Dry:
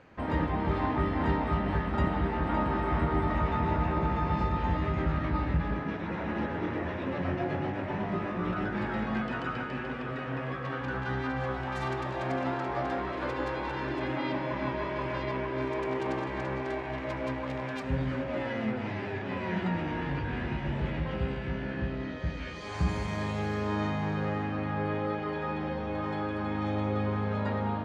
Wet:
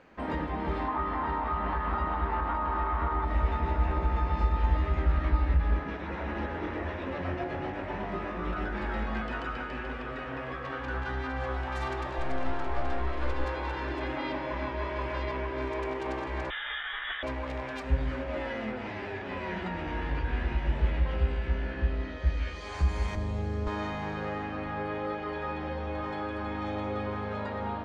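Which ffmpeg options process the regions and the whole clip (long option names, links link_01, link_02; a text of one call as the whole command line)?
ffmpeg -i in.wav -filter_complex "[0:a]asettb=1/sr,asplit=3[link_01][link_02][link_03];[link_01]atrim=end=0.884[link_04];[link_02]atrim=start=0.88:end=3.25,asetpts=PTS-STARTPTS,afade=type=in:duration=0.004:curve=qsin,afade=type=out:start_time=2.366:duration=0.004:curve=qsin,lowpass=frequency=5300:width=0.5412,lowpass=frequency=5300:width=1.3066,equalizer=frequency=1100:width_type=o:width=1:gain=12.5[link_05];[link_03]atrim=start=3.246[link_06];[link_04][link_05]acrossfade=duration=0.004:curve1=hsin:curve2=qsin[link_07];[link_07][link_06]acrossfade=duration=0.004:curve1=qsin:curve2=hsin,asettb=1/sr,asplit=3[link_08][link_09][link_10];[link_08]atrim=end=12.184[link_11];[link_09]atrim=start=12.18:end=13.44,asetpts=PTS-STARTPTS,afade=type=in:duration=0.004:curve=qsin,afade=type=out:start_time=1.256:duration=0.004:curve=qsin,aeval=exprs='(tanh(22.4*val(0)+0.25)-tanh(0.25))/22.4':channel_layout=same,lowshelf=frequency=150:gain=6.5[link_12];[link_10]atrim=start=13.436[link_13];[link_11][link_12]acrossfade=duration=0.004:curve1=hsin:curve2=qsin[link_14];[link_14][link_13]acrossfade=duration=0.004:curve1=qsin:curve2=hsin,asettb=1/sr,asplit=3[link_15][link_16][link_17];[link_15]atrim=end=16.504[link_18];[link_16]atrim=start=16.5:end=17.23,asetpts=PTS-STARTPTS,afade=type=in:duration=0.004:curve=qsin,afade=type=out:start_time=0.726:duration=0.004:curve=qsin,highpass=740,highshelf=frequency=1900:width_type=q:width=3:gain=7.5,lowpass=frequency=3400:width_type=q:width=0.5098,lowpass=frequency=3400:width_type=q:width=0.6013,lowpass=frequency=3400:width_type=q:width=0.9,lowpass=frequency=3400:width_type=q:width=2.563,afreqshift=-4000[link_19];[link_17]atrim=start=17.226[link_20];[link_18][link_19]acrossfade=duration=0.004:curve1=hsin:curve2=qsin[link_21];[link_21][link_20]acrossfade=duration=0.004:curve1=qsin:curve2=hsin,asettb=1/sr,asplit=3[link_22][link_23][link_24];[link_22]atrim=end=23.154[link_25];[link_23]atrim=start=23.15:end=23.67,asetpts=PTS-STARTPTS,afade=type=in:duration=0.004:curve=qsin,afade=type=out:start_time=0.516:duration=0.004:curve=qsin,acrossover=split=140|3000[link_26][link_27][link_28];[link_27]acompressor=threshold=-39dB:ratio=2:attack=3.2:release=140:knee=2.83:detection=peak[link_29];[link_26][link_29][link_28]amix=inputs=3:normalize=0,tiltshelf=frequency=760:gain=7.5[link_30];[link_24]atrim=start=23.666[link_31];[link_25][link_30]acrossfade=duration=0.004:curve1=hsin:curve2=qsin[link_32];[link_32][link_31]acrossfade=duration=0.004:curve1=qsin:curve2=hsin,equalizer=frequency=110:width_type=o:width=0.59:gain=-13,alimiter=limit=-22dB:level=0:latency=1:release=188,asubboost=boost=8.5:cutoff=57" out.wav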